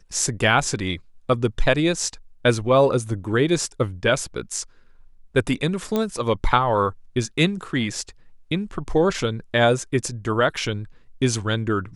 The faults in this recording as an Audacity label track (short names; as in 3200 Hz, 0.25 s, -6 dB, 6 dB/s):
5.960000	5.960000	pop -10 dBFS